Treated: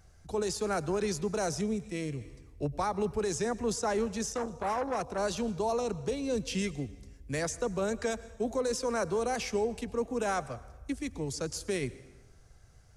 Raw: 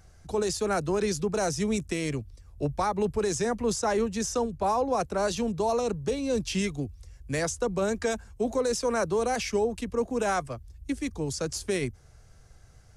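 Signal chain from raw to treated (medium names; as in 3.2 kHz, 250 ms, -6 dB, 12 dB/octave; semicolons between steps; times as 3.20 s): reverberation RT60 1.2 s, pre-delay 93 ms, DRR 17.5 dB; 1.61–2.21 s: harmonic-percussive split percussive -14 dB; 4.29–5.18 s: transformer saturation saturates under 770 Hz; trim -4 dB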